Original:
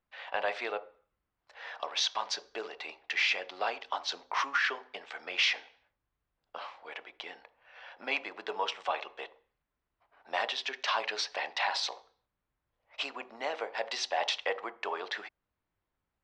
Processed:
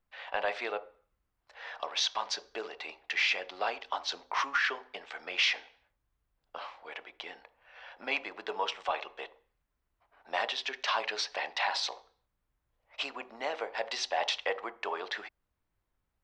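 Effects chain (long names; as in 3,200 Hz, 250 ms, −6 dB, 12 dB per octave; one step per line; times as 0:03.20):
low-shelf EQ 66 Hz +10.5 dB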